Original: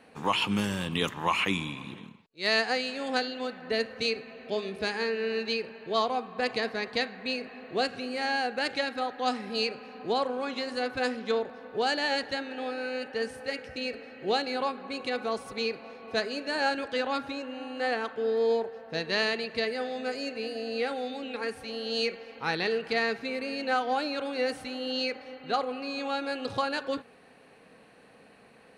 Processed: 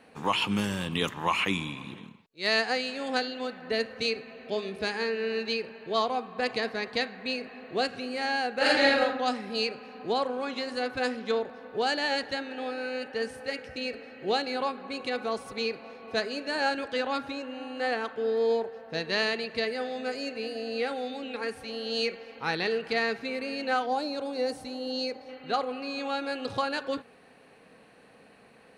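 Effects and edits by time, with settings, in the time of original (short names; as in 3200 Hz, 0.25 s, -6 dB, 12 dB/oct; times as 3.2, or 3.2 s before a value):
8.57–9 reverb throw, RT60 0.9 s, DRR -8 dB
23.86–25.29 band shelf 2000 Hz -8.5 dB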